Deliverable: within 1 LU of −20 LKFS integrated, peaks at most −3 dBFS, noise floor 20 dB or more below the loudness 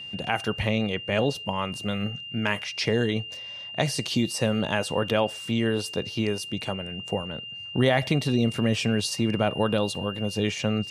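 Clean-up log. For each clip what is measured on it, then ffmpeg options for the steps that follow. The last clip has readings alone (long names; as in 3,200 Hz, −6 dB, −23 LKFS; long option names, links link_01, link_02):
interfering tone 2,800 Hz; level of the tone −36 dBFS; integrated loudness −26.5 LKFS; sample peak −8.5 dBFS; target loudness −20.0 LKFS
→ -af "bandreject=frequency=2800:width=30"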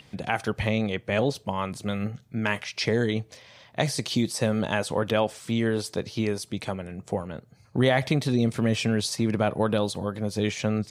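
interfering tone none found; integrated loudness −27.0 LKFS; sample peak −9.0 dBFS; target loudness −20.0 LKFS
→ -af "volume=7dB,alimiter=limit=-3dB:level=0:latency=1"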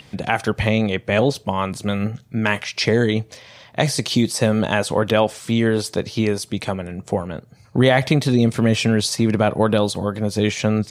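integrated loudness −20.0 LKFS; sample peak −3.0 dBFS; background noise floor −50 dBFS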